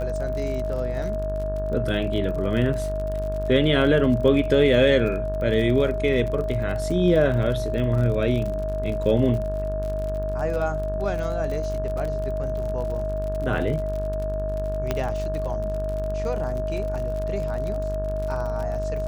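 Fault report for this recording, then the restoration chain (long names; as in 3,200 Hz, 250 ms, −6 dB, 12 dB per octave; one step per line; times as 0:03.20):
mains buzz 50 Hz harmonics 35 −29 dBFS
surface crackle 44 per second −30 dBFS
whistle 630 Hz −27 dBFS
0:14.91: click −10 dBFS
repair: click removal
hum removal 50 Hz, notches 35
notch filter 630 Hz, Q 30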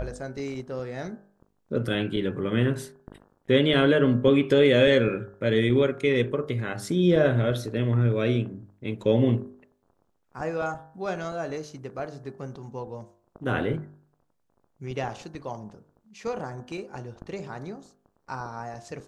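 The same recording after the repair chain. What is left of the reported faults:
none of them is left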